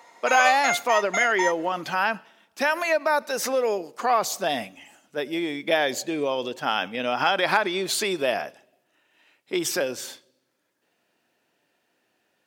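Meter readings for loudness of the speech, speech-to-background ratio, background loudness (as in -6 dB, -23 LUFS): -24.5 LUFS, 2.5 dB, -27.0 LUFS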